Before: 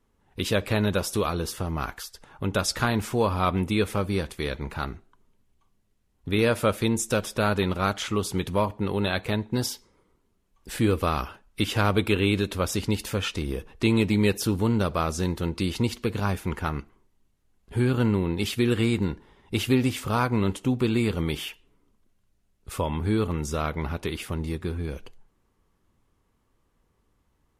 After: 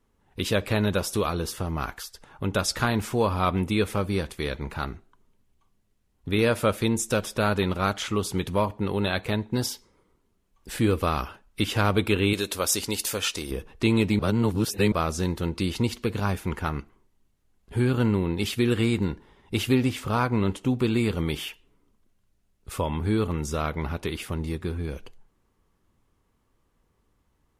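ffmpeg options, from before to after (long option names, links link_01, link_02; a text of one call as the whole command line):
ffmpeg -i in.wav -filter_complex "[0:a]asettb=1/sr,asplit=3[link_01][link_02][link_03];[link_01]atrim=end=12.334[link_04];[link_02]atrim=start=12.33:end=13.51,asetpts=PTS-STARTPTS,afade=type=in:duration=0.004:curve=qsin,afade=type=out:start_time=1.176:duration=0.004:curve=qsin,bass=frequency=250:gain=-10,treble=frequency=4000:gain=10[link_05];[link_03]atrim=start=13.506[link_06];[link_04][link_05]acrossfade=duration=0.004:curve1=hsin:curve2=qsin[link_07];[link_07][link_06]acrossfade=duration=0.004:curve1=qsin:curve2=hsin,asettb=1/sr,asplit=3[link_08][link_09][link_10];[link_08]atrim=end=19.804[link_11];[link_09]atrim=start=19.8:end=20.66,asetpts=PTS-STARTPTS,afade=type=in:duration=0.004:curve=qsin,afade=type=out:start_time=0.856:duration=0.004:curve=qsin,highshelf=frequency=5600:gain=-5[link_12];[link_10]atrim=start=20.656[link_13];[link_11][link_12]acrossfade=duration=0.004:curve1=hsin:curve2=qsin[link_14];[link_14][link_13]acrossfade=duration=0.004:curve1=qsin:curve2=hsin,asplit=3[link_15][link_16][link_17];[link_15]atrim=end=14.192[link_18];[link_16]atrim=start=14.188:end=14.922,asetpts=PTS-STARTPTS,areverse[link_19];[link_17]atrim=start=14.918[link_20];[link_18][link_19]acrossfade=duration=0.004:curve1=hsin:curve2=hsin[link_21];[link_21][link_20]acrossfade=duration=0.004:curve1=hsin:curve2=hsin" out.wav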